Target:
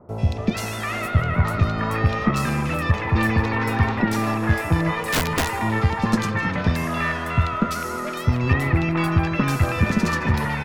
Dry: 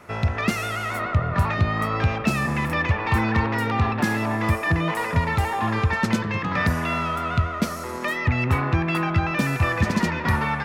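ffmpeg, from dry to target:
ffmpeg -i in.wav -filter_complex "[0:a]acrossover=split=870|2700[link_01][link_02][link_03];[link_03]adelay=90[link_04];[link_02]adelay=450[link_05];[link_01][link_05][link_04]amix=inputs=3:normalize=0,aeval=exprs='0.398*(cos(1*acos(clip(val(0)/0.398,-1,1)))-cos(1*PI/2))+0.0708*(cos(2*acos(clip(val(0)/0.398,-1,1)))-cos(2*PI/2))':channel_layout=same,asplit=2[link_06][link_07];[link_07]aecho=0:1:152|304|456|608:0.141|0.0636|0.0286|0.0129[link_08];[link_06][link_08]amix=inputs=2:normalize=0,asettb=1/sr,asplit=3[link_09][link_10][link_11];[link_09]atrim=end=5.054[link_12];[link_10]atrim=start=5.05:end=5.53,asetpts=PTS-STARTPTS,afade=type=in:duration=0.004:curve=qsin,afade=type=out:start_time=0.476:duration=0.004:curve=qsin,aeval=exprs='(mod(7.08*val(0)+1,2)-1)/7.08':channel_layout=same[link_13];[link_11]atrim=start=5.526[link_14];[link_12][link_13]acrossfade=duration=0.004:curve1=hsin:curve2=qsin[link_15];[link_15][link_14]acrossfade=duration=0.004:curve1=qsin:curve2=hsin,volume=2dB" out.wav

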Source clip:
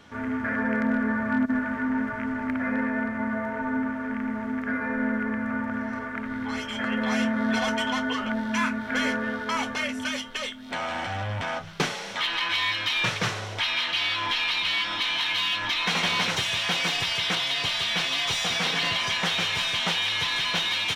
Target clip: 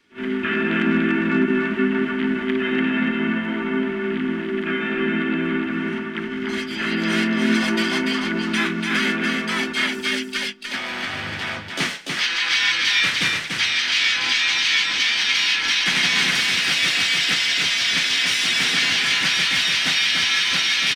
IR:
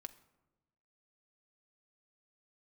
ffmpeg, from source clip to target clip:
-filter_complex "[0:a]agate=range=-13dB:threshold=-32dB:ratio=16:detection=peak,equalizer=frequency=125:width_type=o:width=1:gain=-8,equalizer=frequency=250:width_type=o:width=1:gain=9,equalizer=frequency=500:width_type=o:width=1:gain=-4,equalizer=frequency=1000:width_type=o:width=1:gain=-4,equalizer=frequency=2000:width_type=o:width=1:gain=11,equalizer=frequency=4000:width_type=o:width=1:gain=4,equalizer=frequency=8000:width_type=o:width=1:gain=5,acrossover=split=200|5000[link_01][link_02][link_03];[link_01]acontrast=74[link_04];[link_04][link_02][link_03]amix=inputs=3:normalize=0,asplit=3[link_05][link_06][link_07];[link_06]asetrate=35002,aresample=44100,atempo=1.25992,volume=-6dB[link_08];[link_07]asetrate=66075,aresample=44100,atempo=0.66742,volume=-4dB[link_09];[link_05][link_08][link_09]amix=inputs=3:normalize=0,lowshelf=frequency=110:gain=-10.5,asplit=2[link_10][link_11];[link_11]aecho=0:1:291:0.631[link_12];[link_10][link_12]amix=inputs=2:normalize=0,volume=-4.5dB"

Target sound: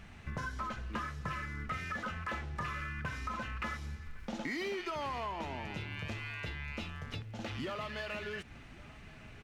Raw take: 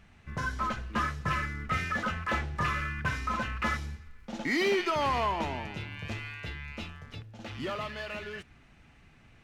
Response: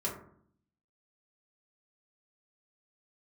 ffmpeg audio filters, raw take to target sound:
-af "acompressor=threshold=-43dB:ratio=5,aecho=1:1:1109:0.075,volume=5.5dB"

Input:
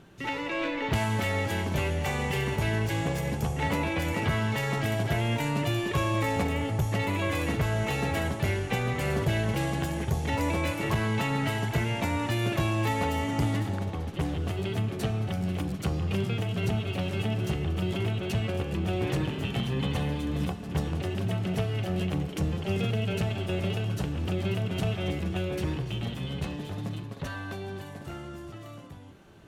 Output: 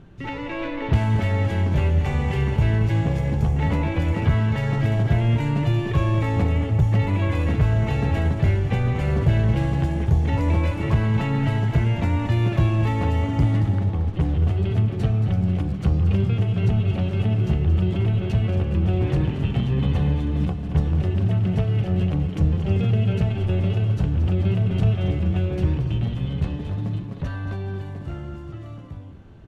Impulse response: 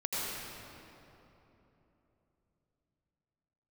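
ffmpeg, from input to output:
-af "aemphasis=mode=reproduction:type=bsi,aecho=1:1:226:0.299"

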